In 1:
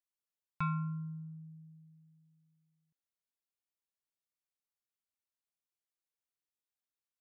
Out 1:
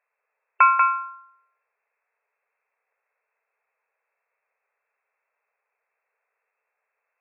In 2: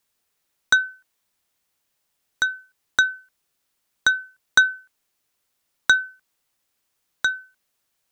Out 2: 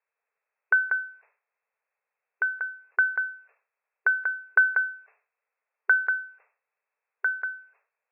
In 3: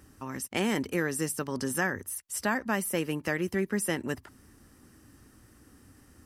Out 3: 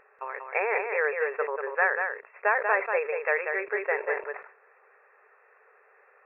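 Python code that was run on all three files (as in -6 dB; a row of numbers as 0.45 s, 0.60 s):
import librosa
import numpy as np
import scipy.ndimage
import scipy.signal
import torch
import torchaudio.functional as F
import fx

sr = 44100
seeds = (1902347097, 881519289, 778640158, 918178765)

y = fx.brickwall_bandpass(x, sr, low_hz=400.0, high_hz=2700.0)
y = y + 10.0 ** (-5.5 / 20.0) * np.pad(y, (int(189 * sr / 1000.0), 0))[:len(y)]
y = fx.sustainer(y, sr, db_per_s=130.0)
y = y * 10.0 ** (-30 / 20.0) / np.sqrt(np.mean(np.square(y)))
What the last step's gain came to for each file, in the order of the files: +23.0 dB, -4.0 dB, +6.0 dB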